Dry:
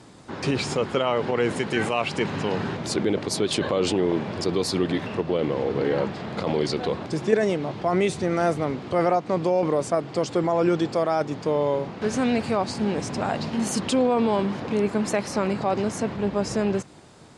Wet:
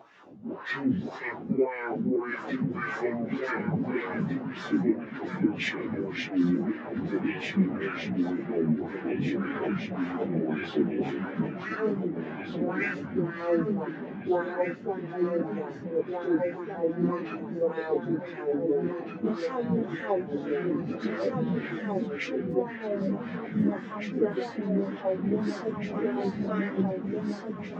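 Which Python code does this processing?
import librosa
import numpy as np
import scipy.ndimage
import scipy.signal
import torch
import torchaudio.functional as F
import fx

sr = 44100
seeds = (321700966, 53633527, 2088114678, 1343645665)

p1 = fx.filter_lfo_bandpass(x, sr, shape='sine', hz=2.9, low_hz=230.0, high_hz=2500.0, q=3.0)
p2 = fx.peak_eq(p1, sr, hz=89.0, db=3.5, octaves=0.2)
p3 = fx.volume_shaper(p2, sr, bpm=88, per_beat=2, depth_db=-13, release_ms=94.0, shape='slow start')
p4 = p2 + (p3 * librosa.db_to_amplitude(2.0))
p5 = fx.dynamic_eq(p4, sr, hz=1200.0, q=0.88, threshold_db=-39.0, ratio=4.0, max_db=-5)
p6 = fx.formant_shift(p5, sr, semitones=-5)
p7 = fx.spec_box(p6, sr, start_s=12.6, length_s=1.42, low_hz=600.0, high_hz=1200.0, gain_db=-11)
p8 = p7 + fx.echo_feedback(p7, sr, ms=1131, feedback_pct=52, wet_db=-6.5, dry=0)
p9 = fx.rider(p8, sr, range_db=3, speed_s=0.5)
p10 = fx.stretch_vocoder_free(p9, sr, factor=1.6)
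y = p10 * librosa.db_to_amplitude(1.5)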